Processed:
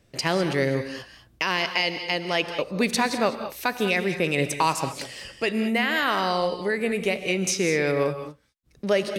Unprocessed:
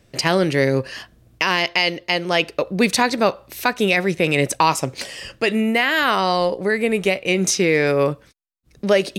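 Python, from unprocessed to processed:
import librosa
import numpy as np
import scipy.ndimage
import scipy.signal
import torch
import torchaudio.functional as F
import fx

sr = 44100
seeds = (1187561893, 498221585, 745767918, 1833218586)

y = fx.rev_gated(x, sr, seeds[0], gate_ms=230, shape='rising', drr_db=8.5)
y = F.gain(torch.from_numpy(y), -6.0).numpy()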